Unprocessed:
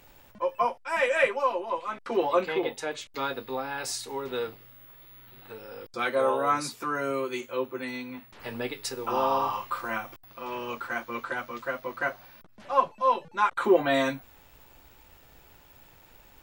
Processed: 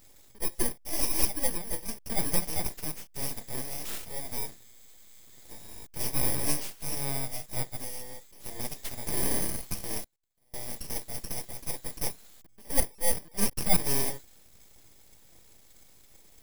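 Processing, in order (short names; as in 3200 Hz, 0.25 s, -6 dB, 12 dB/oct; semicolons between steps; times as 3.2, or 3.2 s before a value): FFT order left unsorted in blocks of 32 samples; 10.04–10.54 flipped gate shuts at -43 dBFS, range -31 dB; full-wave rectifier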